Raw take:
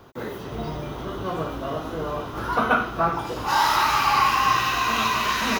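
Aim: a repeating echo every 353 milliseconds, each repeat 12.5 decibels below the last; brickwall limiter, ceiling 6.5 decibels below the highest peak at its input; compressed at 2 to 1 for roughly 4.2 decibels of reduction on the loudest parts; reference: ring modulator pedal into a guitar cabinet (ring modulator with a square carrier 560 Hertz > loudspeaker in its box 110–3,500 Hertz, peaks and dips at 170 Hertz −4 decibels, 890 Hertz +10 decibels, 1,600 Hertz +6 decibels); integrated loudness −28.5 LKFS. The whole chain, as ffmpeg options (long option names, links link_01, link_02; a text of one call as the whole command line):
ffmpeg -i in.wav -af "acompressor=threshold=-23dB:ratio=2,alimiter=limit=-17dB:level=0:latency=1,aecho=1:1:353|706|1059:0.237|0.0569|0.0137,aeval=exprs='val(0)*sgn(sin(2*PI*560*n/s))':channel_layout=same,highpass=110,equalizer=frequency=170:width_type=q:width=4:gain=-4,equalizer=frequency=890:width_type=q:width=4:gain=10,equalizer=frequency=1600:width_type=q:width=4:gain=6,lowpass=frequency=3500:width=0.5412,lowpass=frequency=3500:width=1.3066,volume=-4.5dB" out.wav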